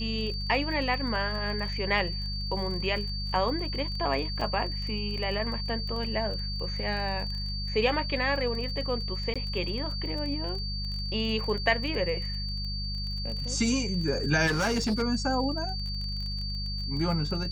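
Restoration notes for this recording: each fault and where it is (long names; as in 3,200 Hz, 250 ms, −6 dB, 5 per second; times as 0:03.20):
surface crackle 25 per second −35 dBFS
mains hum 50 Hz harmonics 4 −34 dBFS
whistle 4,600 Hz −35 dBFS
0:04.41: drop-out 3.9 ms
0:09.34–0:09.36: drop-out 16 ms
0:14.46–0:15.03: clipping −23 dBFS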